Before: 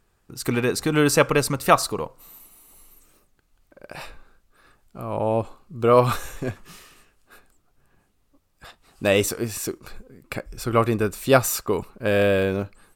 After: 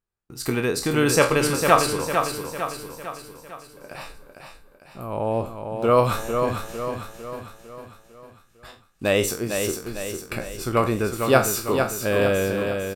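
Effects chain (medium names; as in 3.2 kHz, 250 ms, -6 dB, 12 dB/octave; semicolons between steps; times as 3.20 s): spectral sustain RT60 0.31 s; gate -50 dBFS, range -22 dB; on a send: feedback delay 452 ms, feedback 51%, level -6 dB; on the sum: trim -2 dB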